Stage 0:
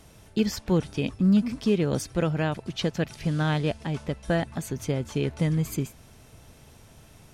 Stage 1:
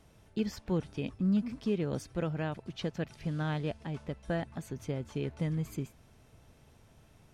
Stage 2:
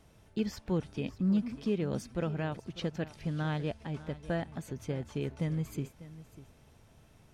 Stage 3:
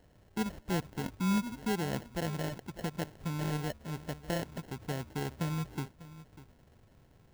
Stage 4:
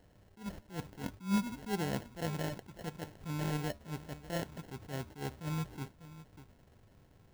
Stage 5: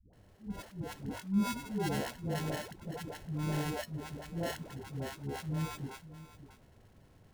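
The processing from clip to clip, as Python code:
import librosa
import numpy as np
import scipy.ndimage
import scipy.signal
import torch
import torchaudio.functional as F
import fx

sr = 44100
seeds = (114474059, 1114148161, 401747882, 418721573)

y1 = fx.high_shelf(x, sr, hz=4000.0, db=-7.0)
y1 = y1 * 10.0 ** (-8.0 / 20.0)
y2 = y1 + 10.0 ** (-16.5 / 20.0) * np.pad(y1, (int(596 * sr / 1000.0), 0))[:len(y1)]
y3 = fx.sample_hold(y2, sr, seeds[0], rate_hz=1200.0, jitter_pct=0)
y3 = y3 * 10.0 ** (-1.5 / 20.0)
y4 = fx.comb_fb(y3, sr, f0_hz=98.0, decay_s=0.19, harmonics='all', damping=0.0, mix_pct=40)
y4 = fx.attack_slew(y4, sr, db_per_s=200.0)
y4 = y4 * 10.0 ** (2.0 / 20.0)
y5 = fx.dispersion(y4, sr, late='highs', ms=134.0, hz=400.0)
y5 = y5 * 10.0 ** (1.5 / 20.0)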